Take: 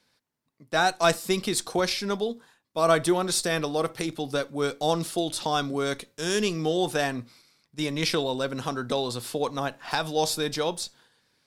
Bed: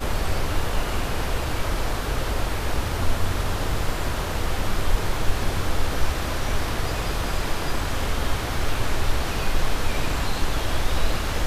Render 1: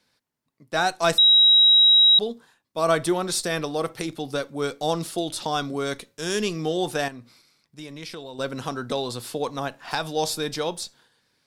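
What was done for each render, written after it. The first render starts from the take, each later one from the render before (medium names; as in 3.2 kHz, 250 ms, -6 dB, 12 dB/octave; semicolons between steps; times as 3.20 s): 1.18–2.19 s: bleep 3.84 kHz -11.5 dBFS; 7.08–8.39 s: compression 2:1, threshold -43 dBFS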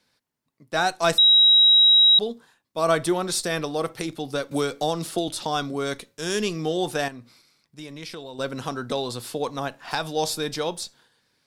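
4.51–5.28 s: three bands compressed up and down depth 100%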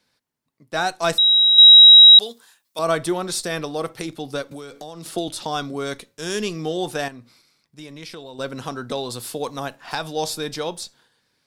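1.58–2.79 s: tilt EQ +4 dB/octave; 4.42–5.06 s: compression 4:1, threshold -34 dBFS; 9.11–9.76 s: treble shelf 7.4 kHz +8 dB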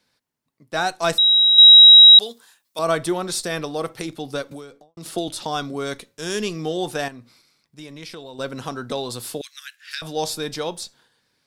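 4.51–4.97 s: studio fade out; 9.41–10.02 s: steep high-pass 1.6 kHz 48 dB/octave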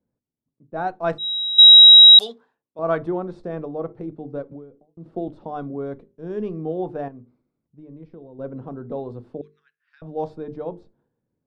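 hum notches 50/100/150/200/250/300/350/400/450 Hz; level-controlled noise filter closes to 370 Hz, open at -6 dBFS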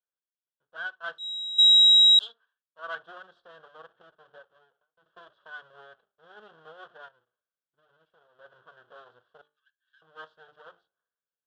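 comb filter that takes the minimum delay 1.8 ms; two resonant band-passes 2.2 kHz, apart 1.1 oct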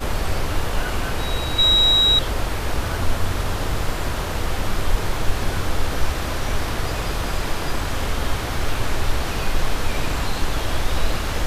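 add bed +1.5 dB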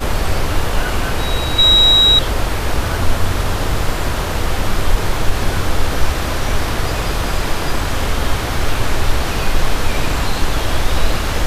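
trim +5.5 dB; peak limiter -1 dBFS, peak gain reduction 2 dB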